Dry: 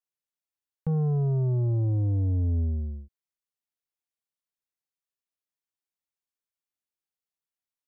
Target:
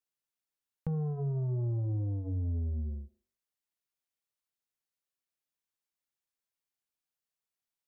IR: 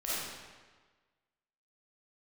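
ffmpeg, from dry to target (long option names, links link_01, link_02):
-filter_complex "[0:a]bandreject=frequency=48.2:width_type=h:width=4,bandreject=frequency=96.4:width_type=h:width=4,bandreject=frequency=144.6:width_type=h:width=4,bandreject=frequency=192.8:width_type=h:width=4,bandreject=frequency=241:width_type=h:width=4,bandreject=frequency=289.2:width_type=h:width=4,bandreject=frequency=337.4:width_type=h:width=4,bandreject=frequency=385.6:width_type=h:width=4,bandreject=frequency=433.8:width_type=h:width=4,bandreject=frequency=482:width_type=h:width=4,bandreject=frequency=530.2:width_type=h:width=4,bandreject=frequency=578.4:width_type=h:width=4,bandreject=frequency=626.6:width_type=h:width=4,bandreject=frequency=674.8:width_type=h:width=4,bandreject=frequency=723:width_type=h:width=4,bandreject=frequency=771.2:width_type=h:width=4,bandreject=frequency=819.4:width_type=h:width=4,bandreject=frequency=867.6:width_type=h:width=4,bandreject=frequency=915.8:width_type=h:width=4,bandreject=frequency=964:width_type=h:width=4,bandreject=frequency=1012.2:width_type=h:width=4,bandreject=frequency=1060.4:width_type=h:width=4,bandreject=frequency=1108.6:width_type=h:width=4,bandreject=frequency=1156.8:width_type=h:width=4,bandreject=frequency=1205:width_type=h:width=4,bandreject=frequency=1253.2:width_type=h:width=4,bandreject=frequency=1301.4:width_type=h:width=4,bandreject=frequency=1349.6:width_type=h:width=4,acompressor=threshold=-33dB:ratio=3,asplit=2[link_01][link_02];[1:a]atrim=start_sample=2205,atrim=end_sample=3528,adelay=101[link_03];[link_02][link_03]afir=irnorm=-1:irlink=0,volume=-27.5dB[link_04];[link_01][link_04]amix=inputs=2:normalize=0"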